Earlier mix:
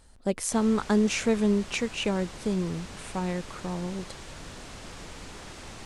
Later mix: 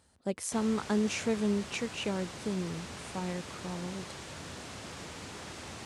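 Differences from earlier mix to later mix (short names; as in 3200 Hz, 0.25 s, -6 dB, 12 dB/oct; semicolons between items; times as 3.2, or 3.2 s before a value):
speech -6.0 dB; master: add HPF 70 Hz 24 dB/oct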